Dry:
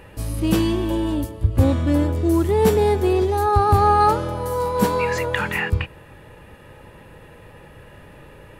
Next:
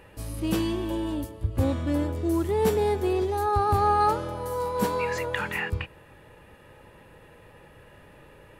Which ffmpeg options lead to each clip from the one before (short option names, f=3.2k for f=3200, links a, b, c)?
-af "bass=f=250:g=-3,treble=f=4k:g=0,volume=-6dB"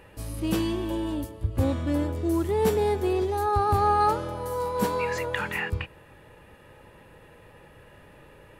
-af anull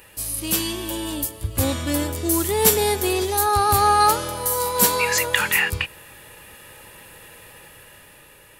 -af "dynaudnorm=f=190:g=11:m=5dB,crystalizer=i=9.5:c=0,volume=-4dB"